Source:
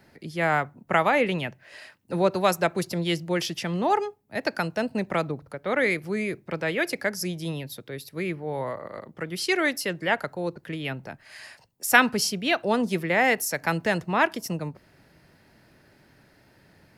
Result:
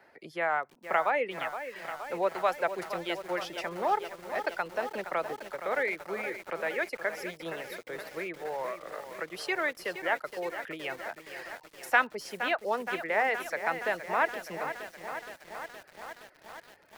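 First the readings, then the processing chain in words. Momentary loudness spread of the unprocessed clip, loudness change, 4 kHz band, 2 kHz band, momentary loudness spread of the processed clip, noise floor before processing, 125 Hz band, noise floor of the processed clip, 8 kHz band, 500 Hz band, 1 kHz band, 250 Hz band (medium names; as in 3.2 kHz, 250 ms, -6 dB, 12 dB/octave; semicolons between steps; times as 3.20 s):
14 LU, -6.5 dB, -10.0 dB, -5.0 dB, 14 LU, -59 dBFS, -20.5 dB, -59 dBFS, -14.5 dB, -5.5 dB, -3.5 dB, -14.0 dB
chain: reverb removal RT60 0.66 s; de-esser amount 50%; three-band isolator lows -21 dB, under 410 Hz, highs -13 dB, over 2.4 kHz; in parallel at +3 dB: compression 16:1, threshold -38 dBFS, peak gain reduction 25 dB; on the sum: bit-crushed delay 469 ms, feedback 80%, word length 7-bit, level -10 dB; trim -5 dB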